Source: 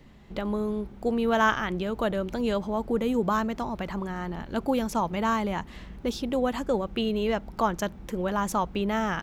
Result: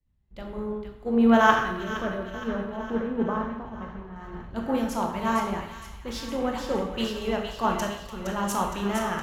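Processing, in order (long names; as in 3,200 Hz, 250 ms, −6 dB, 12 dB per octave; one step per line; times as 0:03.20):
0:01.63–0:04.16: head-to-tape spacing loss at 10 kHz 30 dB
delay with a high-pass on its return 465 ms, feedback 70%, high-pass 1,400 Hz, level −4 dB
convolution reverb RT60 1.2 s, pre-delay 18 ms, DRR 1.5 dB
multiband upward and downward expander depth 100%
level −3 dB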